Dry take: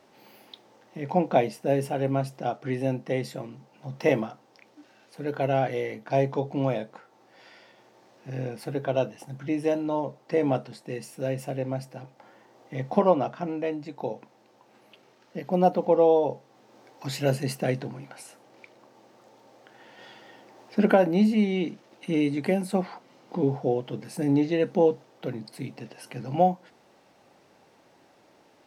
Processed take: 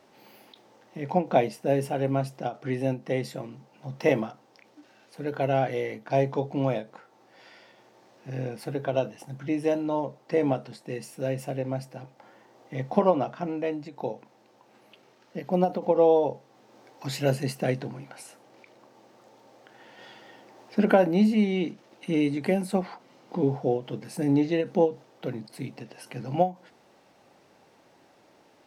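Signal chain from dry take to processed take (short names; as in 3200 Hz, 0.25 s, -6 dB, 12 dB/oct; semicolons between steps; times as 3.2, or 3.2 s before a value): ending taper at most 240 dB/s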